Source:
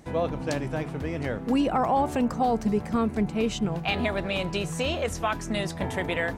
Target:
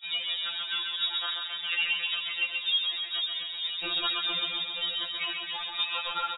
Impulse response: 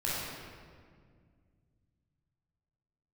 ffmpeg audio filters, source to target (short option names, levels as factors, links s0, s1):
-af "equalizer=f=1700:t=o:w=0.64:g=8.5,acompressor=threshold=0.0447:ratio=5,asetrate=66075,aresample=44100,atempo=0.66742,adynamicsmooth=sensitivity=7:basefreq=520,aecho=1:1:133|266|399|532|665|798|931|1064|1197:0.596|0.357|0.214|0.129|0.0772|0.0463|0.0278|0.0167|0.01,lowpass=f=3300:t=q:w=0.5098,lowpass=f=3300:t=q:w=0.6013,lowpass=f=3300:t=q:w=0.9,lowpass=f=3300:t=q:w=2.563,afreqshift=-3900,afftfilt=real='re*2.83*eq(mod(b,8),0)':imag='im*2.83*eq(mod(b,8),0)':win_size=2048:overlap=0.75,volume=1.26"